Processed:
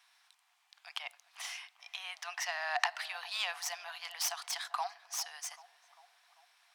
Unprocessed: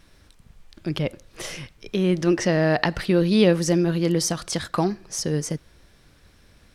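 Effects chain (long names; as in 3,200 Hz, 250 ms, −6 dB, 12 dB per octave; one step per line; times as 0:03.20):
stylus tracing distortion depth 0.055 ms
Chebyshev high-pass with heavy ripple 700 Hz, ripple 3 dB
on a send: feedback echo with a low-pass in the loop 395 ms, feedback 69%, low-pass 1,200 Hz, level −15 dB
on the sum: level −5.5 dB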